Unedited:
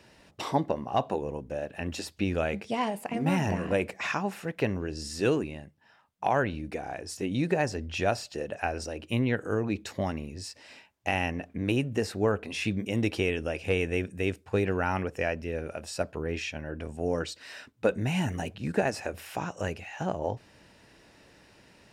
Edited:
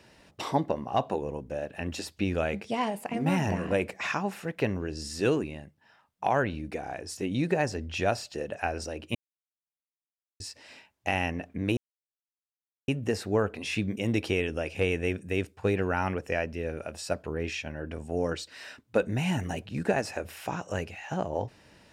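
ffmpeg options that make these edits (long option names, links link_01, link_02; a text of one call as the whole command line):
ffmpeg -i in.wav -filter_complex "[0:a]asplit=4[link_01][link_02][link_03][link_04];[link_01]atrim=end=9.15,asetpts=PTS-STARTPTS,afade=type=out:start_time=9.146:duration=0.004:curve=hsin[link_05];[link_02]atrim=start=9.15:end=10.4,asetpts=PTS-STARTPTS,volume=0[link_06];[link_03]atrim=start=10.4:end=11.77,asetpts=PTS-STARTPTS,afade=type=in:duration=0.004:curve=hsin,afade=type=out:start_time=1.366:duration=0.004:curve=hsin,apad=pad_dur=1.11[link_07];[link_04]atrim=start=11.77,asetpts=PTS-STARTPTS,afade=type=in:duration=0.004:curve=hsin[link_08];[link_05][link_06][link_07][link_08]concat=n=4:v=0:a=1" out.wav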